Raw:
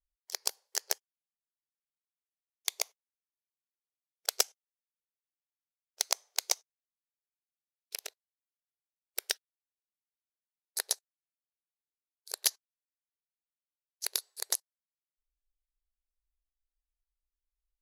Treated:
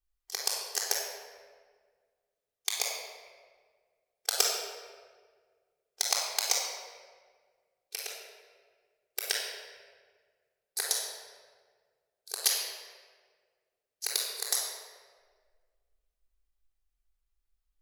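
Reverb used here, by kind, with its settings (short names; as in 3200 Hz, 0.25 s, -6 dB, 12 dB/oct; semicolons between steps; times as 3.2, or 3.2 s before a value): shoebox room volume 2100 m³, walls mixed, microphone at 3.7 m; gain -1 dB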